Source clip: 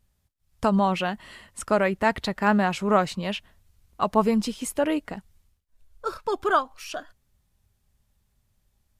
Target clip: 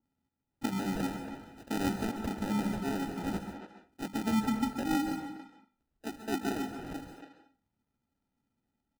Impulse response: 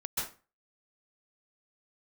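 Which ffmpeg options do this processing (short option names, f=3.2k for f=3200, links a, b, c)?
-filter_complex "[0:a]asplit=4[a][b][c][d];[b]asetrate=22050,aresample=44100,atempo=2,volume=-8dB[e];[c]asetrate=29433,aresample=44100,atempo=1.49831,volume=-13dB[f];[d]asetrate=37084,aresample=44100,atempo=1.18921,volume=-16dB[g];[a][e][f][g]amix=inputs=4:normalize=0,alimiter=limit=-14.5dB:level=0:latency=1:release=166,asplit=3[h][i][j];[h]bandpass=f=270:t=q:w=8,volume=0dB[k];[i]bandpass=f=2.29k:t=q:w=8,volume=-6dB[l];[j]bandpass=f=3.01k:t=q:w=8,volume=-9dB[m];[k][l][m]amix=inputs=3:normalize=0,bandreject=f=50:t=h:w=6,bandreject=f=100:t=h:w=6,bandreject=f=150:t=h:w=6,bandreject=f=200:t=h:w=6,bandreject=f=250:t=h:w=6,bandreject=f=300:t=h:w=6,acrusher=samples=40:mix=1:aa=0.000001,asplit=2[n][o];[o]adelay=280,highpass=300,lowpass=3.4k,asoftclip=type=hard:threshold=-35dB,volume=-8dB[p];[n][p]amix=inputs=2:normalize=0,asplit=2[q][r];[1:a]atrim=start_sample=2205[s];[r][s]afir=irnorm=-1:irlink=0,volume=-9dB[t];[q][t]amix=inputs=2:normalize=0,adynamicequalizer=threshold=0.00158:dfrequency=1900:dqfactor=0.7:tfrequency=1900:tqfactor=0.7:attack=5:release=100:ratio=0.375:range=2:mode=cutabove:tftype=highshelf,volume=5.5dB"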